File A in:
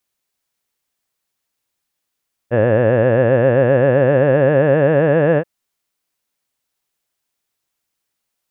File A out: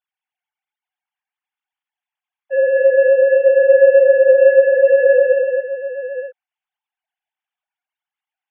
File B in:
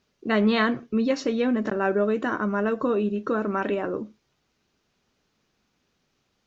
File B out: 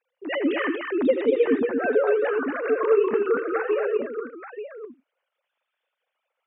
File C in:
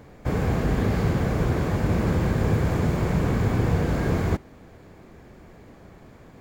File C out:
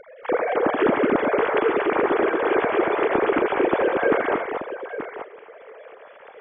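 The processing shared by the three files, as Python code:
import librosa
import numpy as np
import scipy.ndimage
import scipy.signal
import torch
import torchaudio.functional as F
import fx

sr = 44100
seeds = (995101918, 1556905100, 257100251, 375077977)

y = fx.sine_speech(x, sr)
y = fx.echo_multitap(y, sr, ms=(80, 89, 233, 880), db=(-12.5, -14.5, -5.0, -10.5))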